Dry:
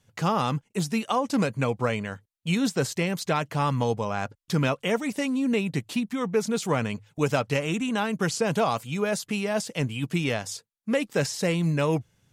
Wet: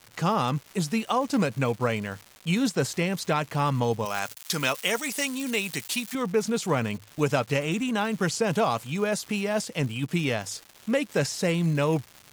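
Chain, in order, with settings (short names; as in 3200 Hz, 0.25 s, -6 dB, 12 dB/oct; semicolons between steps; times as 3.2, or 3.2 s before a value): crackle 350/s -35 dBFS; 4.05–6.15 tilt +3.5 dB/oct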